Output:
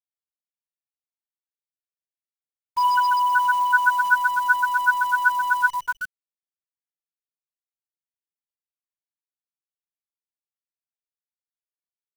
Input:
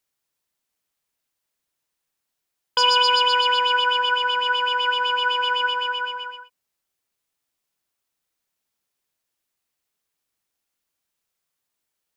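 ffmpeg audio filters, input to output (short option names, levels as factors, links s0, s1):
-af "afftfilt=real='re*gte(hypot(re,im),0.562)':imag='im*gte(hypot(re,im),0.562)':win_size=1024:overlap=0.75,highshelf=f=2000:t=q:w=3:g=-11.5,acrusher=bits=7:dc=4:mix=0:aa=0.000001"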